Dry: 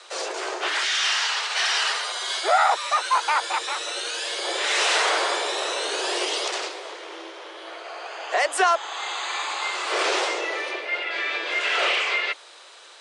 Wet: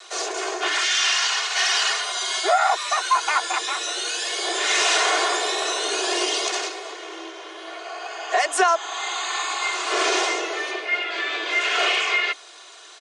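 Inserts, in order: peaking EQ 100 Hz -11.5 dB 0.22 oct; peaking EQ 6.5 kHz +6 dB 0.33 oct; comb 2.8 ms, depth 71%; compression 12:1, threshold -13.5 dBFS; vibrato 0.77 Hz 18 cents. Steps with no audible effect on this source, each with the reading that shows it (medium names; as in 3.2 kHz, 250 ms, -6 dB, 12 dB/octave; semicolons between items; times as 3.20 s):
peaking EQ 100 Hz: input has nothing below 270 Hz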